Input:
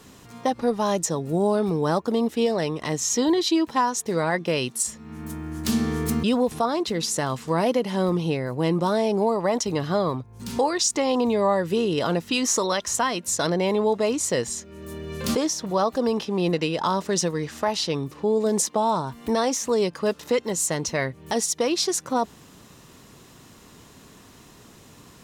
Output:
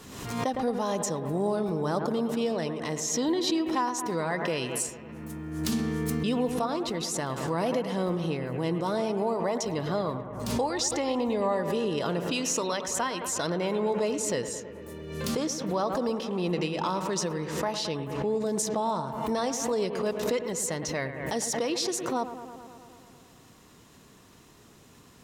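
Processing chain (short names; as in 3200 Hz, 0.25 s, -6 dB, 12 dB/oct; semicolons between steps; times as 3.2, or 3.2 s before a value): analogue delay 0.109 s, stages 2048, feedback 74%, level -11 dB; backwards sustainer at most 50 dB/s; gain -6.5 dB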